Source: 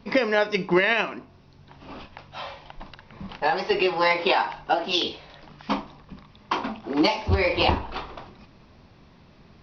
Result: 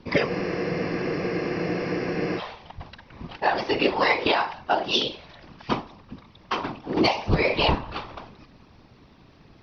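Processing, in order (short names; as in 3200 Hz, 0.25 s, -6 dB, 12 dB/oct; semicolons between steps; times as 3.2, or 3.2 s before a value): whisperiser; spectral freeze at 0.31, 2.07 s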